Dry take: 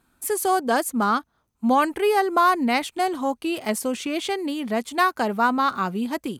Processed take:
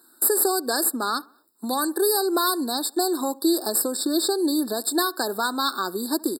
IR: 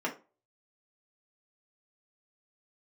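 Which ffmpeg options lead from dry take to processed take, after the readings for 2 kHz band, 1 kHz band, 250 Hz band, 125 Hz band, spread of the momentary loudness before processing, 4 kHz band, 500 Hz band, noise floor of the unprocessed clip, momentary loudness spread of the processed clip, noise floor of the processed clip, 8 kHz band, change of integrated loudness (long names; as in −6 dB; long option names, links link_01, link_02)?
−5.5 dB, −6.0 dB, 0.0 dB, can't be measured, 8 LU, +5.5 dB, −0.5 dB, −71 dBFS, 6 LU, −57 dBFS, +9.0 dB, −0.5 dB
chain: -filter_complex "[0:a]acrossover=split=2400[link_01][link_02];[link_01]acompressor=threshold=-28dB:ratio=6[link_03];[link_02]alimiter=level_in=0.5dB:limit=-24dB:level=0:latency=1:release=422,volume=-0.5dB[link_04];[link_03][link_04]amix=inputs=2:normalize=0,crystalizer=i=7.5:c=0,aeval=exprs='(tanh(3.55*val(0)+0.25)-tanh(0.25))/3.55':channel_layout=same,highpass=frequency=330:width_type=q:width=3.6,asplit=2[link_05][link_06];[link_06]adelay=70,lowpass=frequency=1900:poles=1,volume=-22dB,asplit=2[link_07][link_08];[link_08]adelay=70,lowpass=frequency=1900:poles=1,volume=0.5,asplit=2[link_09][link_10];[link_10]adelay=70,lowpass=frequency=1900:poles=1,volume=0.5[link_11];[link_07][link_09][link_11]amix=inputs=3:normalize=0[link_12];[link_05][link_12]amix=inputs=2:normalize=0,afftfilt=real='re*eq(mod(floor(b*sr/1024/1800),2),0)':imag='im*eq(mod(floor(b*sr/1024/1800),2),0)':win_size=1024:overlap=0.75"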